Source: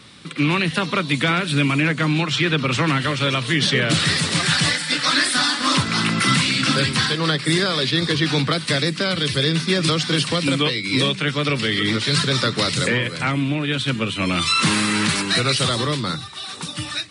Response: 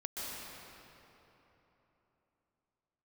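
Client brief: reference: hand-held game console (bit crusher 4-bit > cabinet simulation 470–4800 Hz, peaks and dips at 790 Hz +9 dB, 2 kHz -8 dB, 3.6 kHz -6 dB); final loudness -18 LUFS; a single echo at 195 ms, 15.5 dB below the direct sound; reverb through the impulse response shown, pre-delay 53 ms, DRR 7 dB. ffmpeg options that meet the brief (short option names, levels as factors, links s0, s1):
-filter_complex "[0:a]aecho=1:1:195:0.168,asplit=2[s0][s1];[1:a]atrim=start_sample=2205,adelay=53[s2];[s1][s2]afir=irnorm=-1:irlink=0,volume=0.335[s3];[s0][s3]amix=inputs=2:normalize=0,acrusher=bits=3:mix=0:aa=0.000001,highpass=470,equalizer=f=790:t=q:w=4:g=9,equalizer=f=2000:t=q:w=4:g=-8,equalizer=f=3600:t=q:w=4:g=-6,lowpass=f=4800:w=0.5412,lowpass=f=4800:w=1.3066,volume=1.58"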